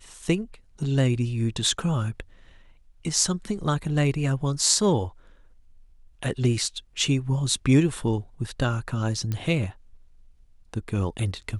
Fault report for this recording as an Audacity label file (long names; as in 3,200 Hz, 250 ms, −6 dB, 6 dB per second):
9.320000	9.320000	click −16 dBFS